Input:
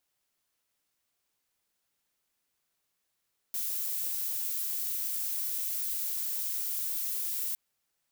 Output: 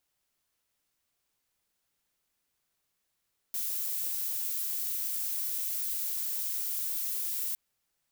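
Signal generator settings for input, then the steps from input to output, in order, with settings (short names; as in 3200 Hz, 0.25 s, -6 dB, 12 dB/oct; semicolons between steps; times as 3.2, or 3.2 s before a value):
noise violet, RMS -33 dBFS 4.01 s
low shelf 120 Hz +5.5 dB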